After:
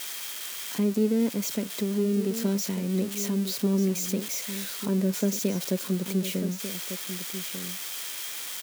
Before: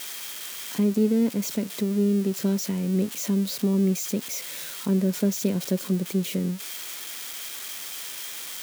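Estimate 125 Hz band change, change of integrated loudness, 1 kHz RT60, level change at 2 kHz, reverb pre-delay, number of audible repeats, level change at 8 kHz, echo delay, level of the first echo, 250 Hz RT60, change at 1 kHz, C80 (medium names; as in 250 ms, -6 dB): -3.0 dB, -2.0 dB, no reverb, 0.0 dB, no reverb, 1, +0.5 dB, 1194 ms, -10.5 dB, no reverb, 0.0 dB, no reverb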